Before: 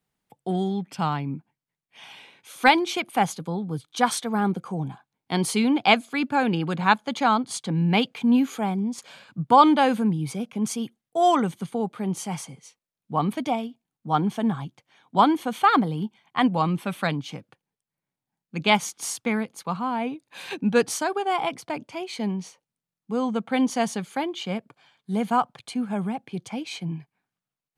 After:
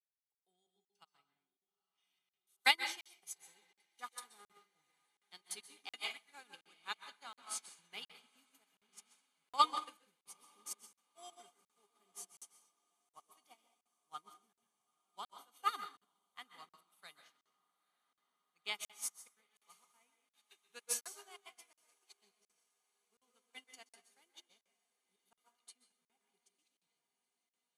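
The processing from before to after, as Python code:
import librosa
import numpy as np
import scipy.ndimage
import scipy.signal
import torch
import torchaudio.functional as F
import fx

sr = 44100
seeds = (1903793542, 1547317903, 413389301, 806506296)

p1 = np.diff(x, prepend=0.0)
p2 = fx.level_steps(p1, sr, step_db=14)
p3 = p1 + (p2 * librosa.db_to_amplitude(1.0))
p4 = fx.comb_fb(p3, sr, f0_hz=410.0, decay_s=0.15, harmonics='odd', damping=0.0, mix_pct=80)
p5 = fx.step_gate(p4, sr, bpm=158, pattern='x.xxxxx.x.x.xxxx', floor_db=-24.0, edge_ms=4.5)
p6 = fx.echo_diffused(p5, sr, ms=893, feedback_pct=77, wet_db=-13.5)
p7 = fx.rev_plate(p6, sr, seeds[0], rt60_s=0.71, hf_ratio=0.85, predelay_ms=115, drr_db=3.0)
p8 = fx.buffer_crackle(p7, sr, first_s=0.85, period_s=0.72, block=2048, kind='zero')
p9 = fx.upward_expand(p8, sr, threshold_db=-56.0, expansion=2.5)
y = p9 * librosa.db_to_amplitude(10.0)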